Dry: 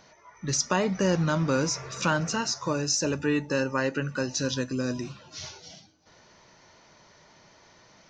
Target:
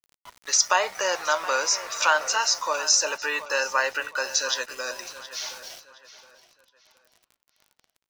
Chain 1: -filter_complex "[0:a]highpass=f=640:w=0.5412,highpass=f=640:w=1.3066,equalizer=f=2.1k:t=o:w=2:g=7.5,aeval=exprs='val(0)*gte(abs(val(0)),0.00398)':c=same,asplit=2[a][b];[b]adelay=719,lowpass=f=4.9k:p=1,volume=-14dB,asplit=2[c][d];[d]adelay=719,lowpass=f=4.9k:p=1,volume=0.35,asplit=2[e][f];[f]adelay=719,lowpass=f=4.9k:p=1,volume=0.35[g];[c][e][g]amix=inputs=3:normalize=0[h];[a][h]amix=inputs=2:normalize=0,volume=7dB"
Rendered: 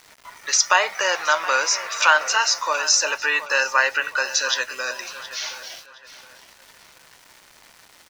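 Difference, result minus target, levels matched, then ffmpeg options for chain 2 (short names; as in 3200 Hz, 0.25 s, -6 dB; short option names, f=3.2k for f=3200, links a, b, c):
2000 Hz band +2.5 dB
-filter_complex "[0:a]highpass=f=640:w=0.5412,highpass=f=640:w=1.3066,aeval=exprs='val(0)*gte(abs(val(0)),0.00398)':c=same,asplit=2[a][b];[b]adelay=719,lowpass=f=4.9k:p=1,volume=-14dB,asplit=2[c][d];[d]adelay=719,lowpass=f=4.9k:p=1,volume=0.35,asplit=2[e][f];[f]adelay=719,lowpass=f=4.9k:p=1,volume=0.35[g];[c][e][g]amix=inputs=3:normalize=0[h];[a][h]amix=inputs=2:normalize=0,volume=7dB"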